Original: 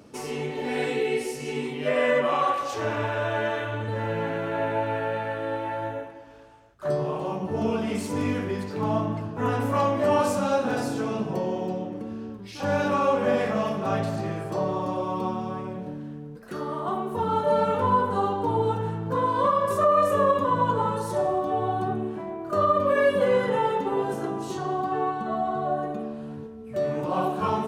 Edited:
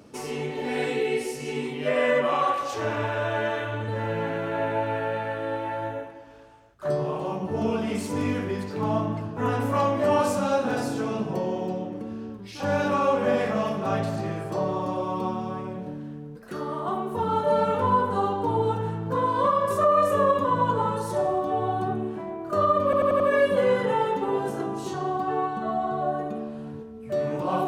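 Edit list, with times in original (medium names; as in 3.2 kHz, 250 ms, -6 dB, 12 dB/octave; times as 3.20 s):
22.84 s: stutter 0.09 s, 5 plays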